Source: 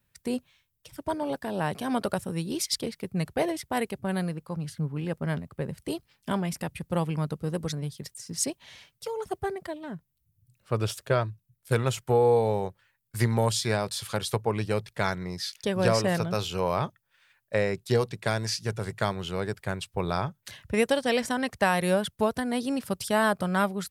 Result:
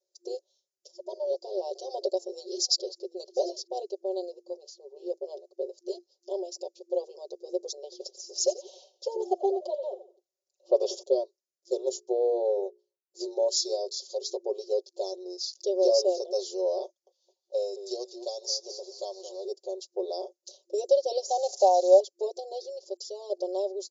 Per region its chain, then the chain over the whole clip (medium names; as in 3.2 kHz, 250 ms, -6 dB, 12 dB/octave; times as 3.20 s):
1.27–3.67 s: peaking EQ 4.7 kHz +4.5 dB 0.65 oct + feedback delay 743 ms, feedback 15%, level -24 dB
7.83–11.03 s: high-order bell 1.3 kHz +11.5 dB 3 oct + frequency-shifting echo 87 ms, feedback 36%, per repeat -89 Hz, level -14 dB
11.75–14.39 s: hum notches 60/120/180/240/300/360/420 Hz + three bands expanded up and down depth 40%
16.85–19.45 s: high-pass 650 Hz + frequency-shifting echo 216 ms, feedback 54%, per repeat -120 Hz, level -12.5 dB
21.29–22.00 s: zero-crossing glitches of -23.5 dBFS + steep high-pass 390 Hz 48 dB/octave + peaking EQ 780 Hz +13.5 dB 0.62 oct
22.61–23.30 s: compression 1.5:1, threshold -38 dBFS + small samples zeroed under -56 dBFS
whole clip: FFT band-pass 350–7300 Hz; elliptic band-stop 600–4800 Hz, stop band 70 dB; comb 5.4 ms, depth 86%